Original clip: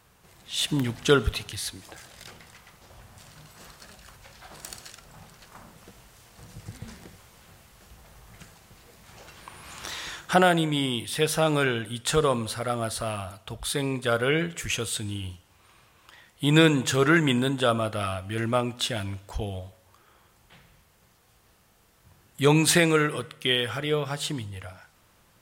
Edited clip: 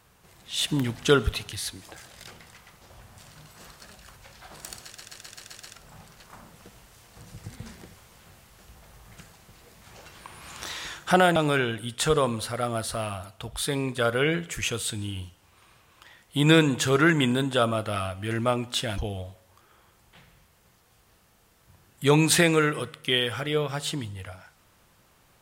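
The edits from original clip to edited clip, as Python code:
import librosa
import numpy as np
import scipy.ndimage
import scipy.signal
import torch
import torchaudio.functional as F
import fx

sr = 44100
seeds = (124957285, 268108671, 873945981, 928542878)

y = fx.edit(x, sr, fx.stutter(start_s=4.85, slice_s=0.13, count=7),
    fx.cut(start_s=10.58, length_s=0.85),
    fx.cut(start_s=19.05, length_s=0.3), tone=tone)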